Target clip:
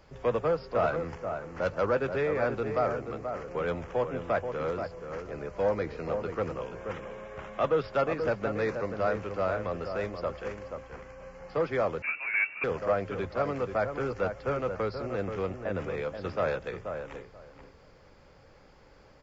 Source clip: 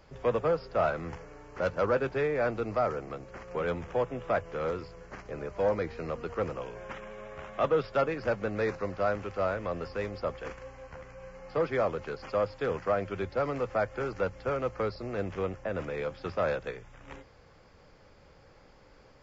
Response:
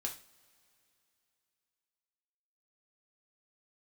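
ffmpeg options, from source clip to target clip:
-filter_complex "[0:a]asplit=2[s0][s1];[s1]adelay=481,lowpass=f=1600:p=1,volume=0.473,asplit=2[s2][s3];[s3]adelay=481,lowpass=f=1600:p=1,volume=0.18,asplit=2[s4][s5];[s5]adelay=481,lowpass=f=1600:p=1,volume=0.18[s6];[s2][s4][s6]amix=inputs=3:normalize=0[s7];[s0][s7]amix=inputs=2:normalize=0,asettb=1/sr,asplit=3[s8][s9][s10];[s8]atrim=end=12.024[s11];[s9]atrim=start=12.02:end=12.64,asetpts=PTS-STARTPTS,afade=t=in:d=0.004:c=qsin,afade=t=out:st=0.616:d=0.004:c=qsin,lowpass=f=2400:t=q:w=0.5098,lowpass=f=2400:t=q:w=0.6013,lowpass=f=2400:t=q:w=0.9,lowpass=f=2400:t=q:w=2.563,afreqshift=-2800[s12];[s10]atrim=start=12.636[s13];[s11][s12]acrossfade=d=0.004:c1=hsin:c2=qsin[s14];[s14][s13]acrossfade=d=0.004:c1=qsin:c2=hsin"

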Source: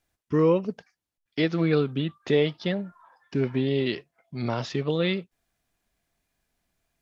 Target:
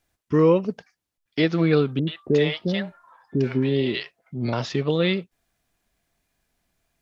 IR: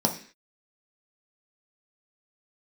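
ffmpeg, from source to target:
-filter_complex "[0:a]asettb=1/sr,asplit=3[s0][s1][s2];[s0]atrim=end=1.994[s3];[s1]atrim=start=1.99:end=4.53,asetpts=PTS-STARTPTS,afade=t=in:d=0.004:c=qsin,afade=t=out:st=2.536:d=0.004:c=qsin,acrossover=split=650[s4][s5];[s5]adelay=80[s6];[s4][s6]amix=inputs=2:normalize=0,atrim=end_sample=112014[s7];[s2]atrim=start=4.526[s8];[s3][s7]acrossfade=d=0.004:c1=hsin:c2=qsin[s9];[s9][s8]acrossfade=d=0.004:c1=qsin:c2=hsin,volume=1.5"

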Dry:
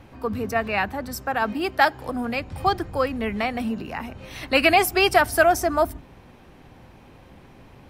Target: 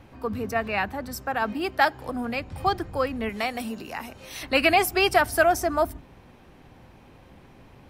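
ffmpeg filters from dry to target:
-filter_complex "[0:a]asettb=1/sr,asplit=3[s0][s1][s2];[s0]atrim=end=3.294[s3];[s1]atrim=start=3.29:end=4.43,asetpts=PTS-STARTPTS,afade=t=in:d=0.004:c=qsin,afade=t=out:st=1.136:d=0.004:c=qsin,bass=f=250:g=-7,treble=f=4000:g=10[s4];[s2]atrim=start=4.426[s5];[s3][s4]acrossfade=d=0.004:c1=hsin:c2=qsin[s6];[s6][s5]acrossfade=d=0.004:c1=qsin:c2=hsin,volume=0.75"

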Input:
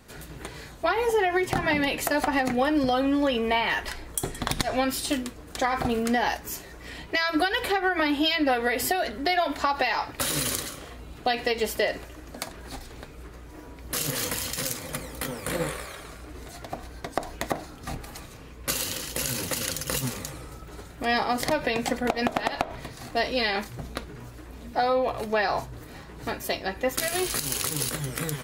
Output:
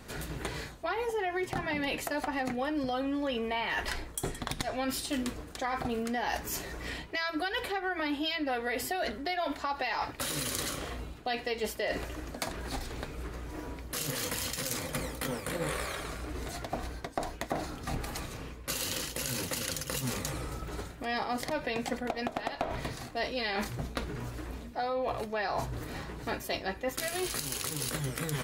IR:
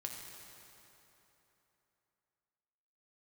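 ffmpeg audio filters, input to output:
-af "areverse,acompressor=threshold=0.02:ratio=6,areverse,highshelf=f=9300:g=-3.5,volume=1.5"

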